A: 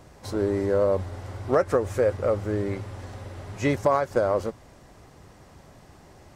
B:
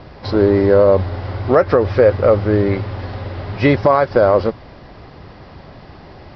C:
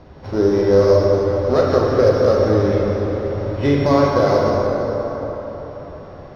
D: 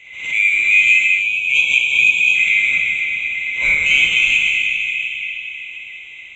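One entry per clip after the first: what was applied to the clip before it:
steep low-pass 5.2 kHz 96 dB/octave; loudness maximiser +13 dB; trim -1 dB
sorted samples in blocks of 8 samples; distance through air 240 m; plate-style reverb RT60 4.5 s, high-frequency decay 0.55×, pre-delay 0 ms, DRR -4 dB; trim -6 dB
split-band scrambler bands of 2 kHz; spectral selection erased 1.21–2.35 s, 1.1–2.2 kHz; swell ahead of each attack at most 77 dB/s

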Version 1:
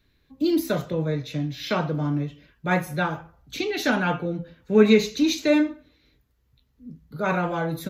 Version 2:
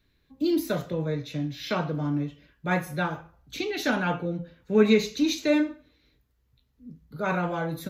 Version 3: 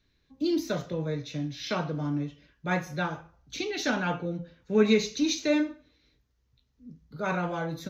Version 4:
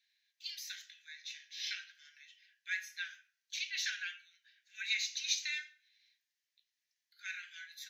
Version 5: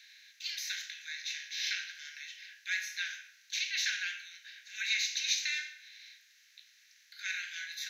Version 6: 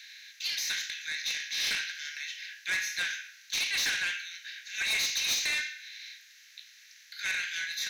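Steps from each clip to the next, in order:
feedback comb 58 Hz, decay 0.42 s, mix 40%
resonant high shelf 7.5 kHz -7.5 dB, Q 3; trim -2.5 dB
steep high-pass 1.6 kHz 96 dB/octave; trim -2 dB
spectral levelling over time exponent 0.6; trim +1 dB
saturation -33 dBFS, distortion -10 dB; trim +8 dB

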